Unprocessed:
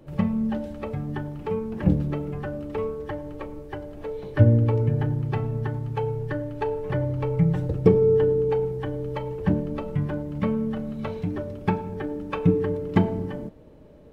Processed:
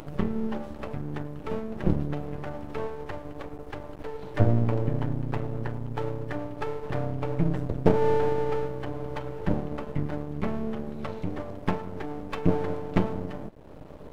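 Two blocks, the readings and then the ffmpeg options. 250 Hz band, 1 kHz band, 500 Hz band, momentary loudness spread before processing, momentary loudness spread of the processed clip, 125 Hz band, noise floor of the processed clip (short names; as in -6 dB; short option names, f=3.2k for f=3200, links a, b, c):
-4.5 dB, 0.0 dB, -5.0 dB, 13 LU, 14 LU, -5.5 dB, -43 dBFS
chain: -af "aeval=exprs='max(val(0),0)':c=same,acompressor=mode=upward:threshold=-31dB:ratio=2.5"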